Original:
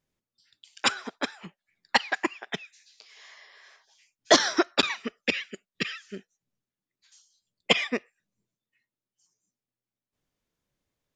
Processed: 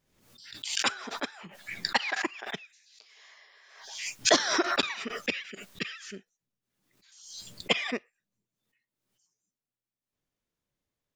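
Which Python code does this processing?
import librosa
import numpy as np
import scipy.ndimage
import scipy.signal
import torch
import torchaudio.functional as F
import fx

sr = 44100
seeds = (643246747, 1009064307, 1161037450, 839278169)

y = fx.pre_swell(x, sr, db_per_s=63.0)
y = F.gain(torch.from_numpy(y), -4.5).numpy()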